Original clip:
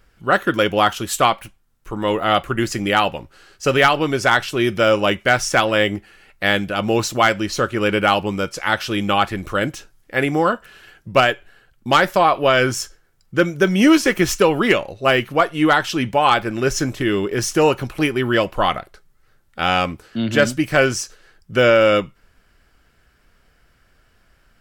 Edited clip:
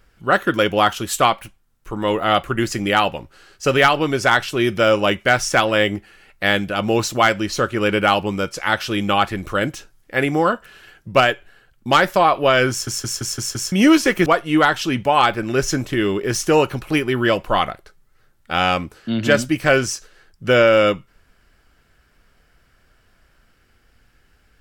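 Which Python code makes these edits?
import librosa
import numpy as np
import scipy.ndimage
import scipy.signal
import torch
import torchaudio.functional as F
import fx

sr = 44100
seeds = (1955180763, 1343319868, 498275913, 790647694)

y = fx.edit(x, sr, fx.stutter_over(start_s=12.7, slice_s=0.17, count=6),
    fx.cut(start_s=14.26, length_s=1.08), tone=tone)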